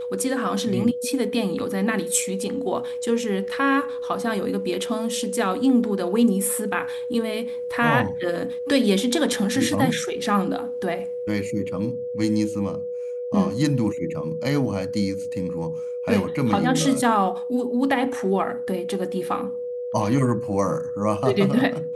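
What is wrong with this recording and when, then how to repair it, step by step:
tone 490 Hz -27 dBFS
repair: notch 490 Hz, Q 30

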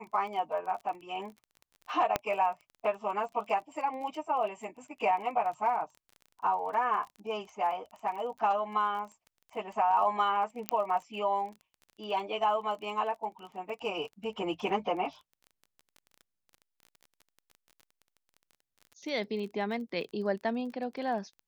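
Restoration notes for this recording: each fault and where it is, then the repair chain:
crackle 23/s -41 dBFS
2.16 pop -12 dBFS
10.69 pop -12 dBFS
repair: de-click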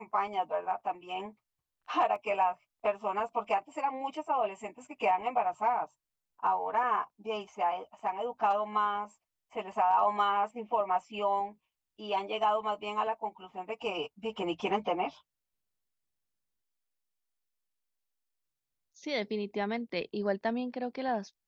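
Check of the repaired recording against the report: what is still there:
2.16 pop

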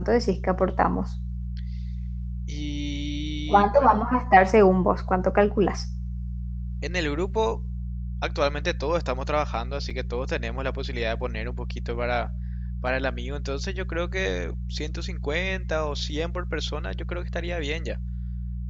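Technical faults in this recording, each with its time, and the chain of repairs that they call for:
hum 60 Hz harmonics 3 -31 dBFS
9.9 gap 4.9 ms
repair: de-hum 60 Hz, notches 3; interpolate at 9.9, 4.9 ms

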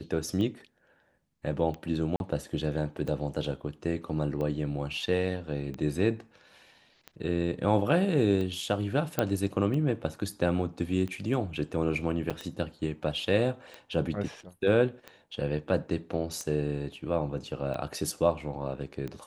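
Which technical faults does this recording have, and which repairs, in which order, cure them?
tick 45 rpm -24 dBFS
2.16–2.2 gap 41 ms
9.19 pop -11 dBFS
12.3–12.31 gap 6.2 ms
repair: de-click; interpolate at 2.16, 41 ms; interpolate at 12.3, 6.2 ms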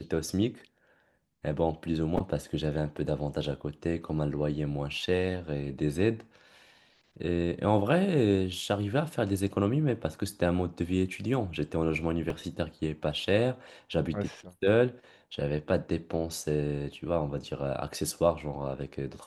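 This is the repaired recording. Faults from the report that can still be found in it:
none

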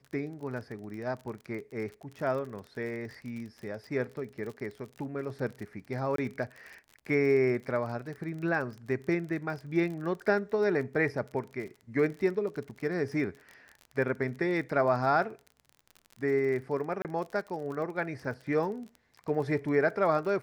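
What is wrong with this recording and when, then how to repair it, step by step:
crackle 36/s -38 dBFS
6.16–6.18 gap 23 ms
17.02–17.05 gap 28 ms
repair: de-click; interpolate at 6.16, 23 ms; interpolate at 17.02, 28 ms

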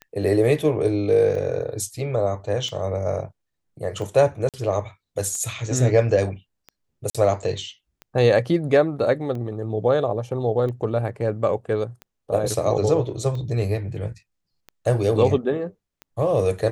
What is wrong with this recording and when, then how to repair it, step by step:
tick 45 rpm -23 dBFS
4.49–4.54 gap 47 ms
7.1–7.15 gap 46 ms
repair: de-click; interpolate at 4.49, 47 ms; interpolate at 7.1, 46 ms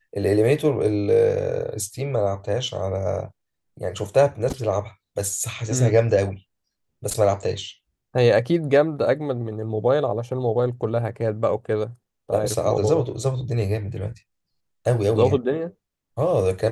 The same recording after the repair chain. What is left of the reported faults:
none

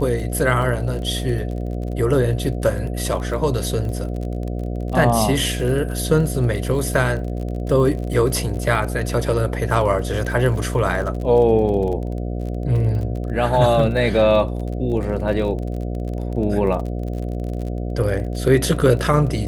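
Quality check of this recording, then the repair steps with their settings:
buzz 60 Hz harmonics 12 -25 dBFS
crackle 35/s -28 dBFS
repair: de-click; de-hum 60 Hz, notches 12

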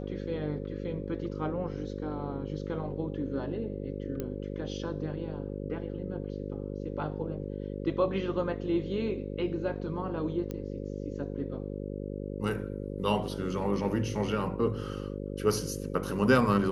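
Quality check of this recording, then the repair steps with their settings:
buzz 50 Hz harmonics 11 -37 dBFS
4.2 pop -21 dBFS
10.51 pop -24 dBFS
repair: de-click; de-hum 50 Hz, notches 11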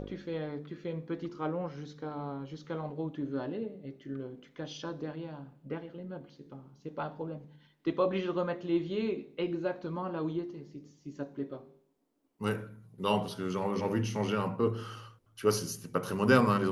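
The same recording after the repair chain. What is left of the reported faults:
10.51 pop

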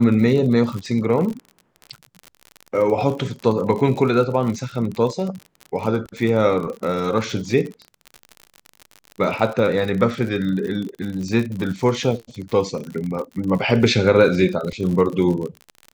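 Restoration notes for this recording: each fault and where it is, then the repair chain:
crackle 50/s -27 dBFS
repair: de-click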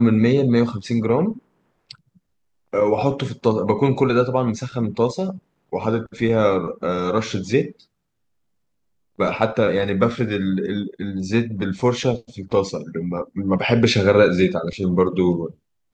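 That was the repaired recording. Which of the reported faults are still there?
none

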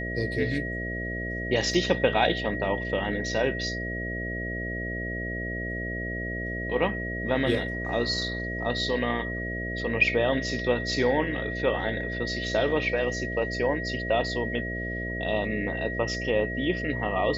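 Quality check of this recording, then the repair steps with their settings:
buzz 60 Hz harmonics 11 -34 dBFS
tone 1900 Hz -33 dBFS
1.74 gap 2.2 ms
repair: de-hum 60 Hz, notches 11; notch 1900 Hz, Q 30; interpolate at 1.74, 2.2 ms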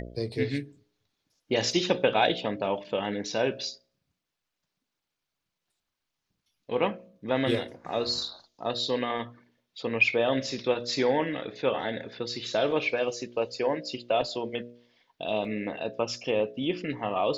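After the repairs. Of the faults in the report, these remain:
none

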